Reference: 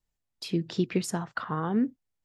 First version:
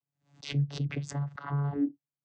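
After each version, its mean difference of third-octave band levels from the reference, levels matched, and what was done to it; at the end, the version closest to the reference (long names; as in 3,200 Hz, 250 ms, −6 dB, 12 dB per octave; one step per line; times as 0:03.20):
6.5 dB: parametric band 360 Hz −13 dB 0.35 octaves
channel vocoder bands 16, saw 142 Hz
background raised ahead of every attack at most 150 dB per second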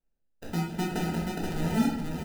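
15.0 dB: sample-rate reduction 1,100 Hz, jitter 0%
on a send: single-tap delay 479 ms −4 dB
on the sum: rectangular room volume 260 cubic metres, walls mixed, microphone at 1.6 metres
level −7.5 dB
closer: first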